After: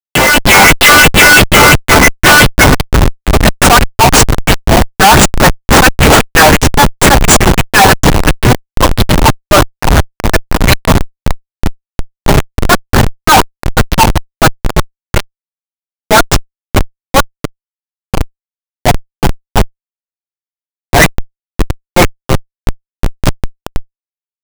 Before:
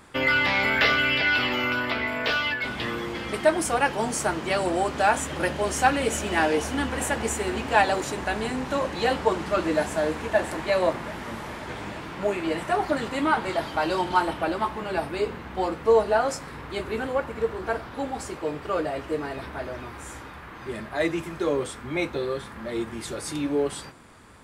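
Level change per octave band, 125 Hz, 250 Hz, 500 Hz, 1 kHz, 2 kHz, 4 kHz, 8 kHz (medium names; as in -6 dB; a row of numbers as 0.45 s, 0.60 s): +25.0 dB, +16.0 dB, +11.5 dB, +16.5 dB, +17.0 dB, +19.5 dB, +22.5 dB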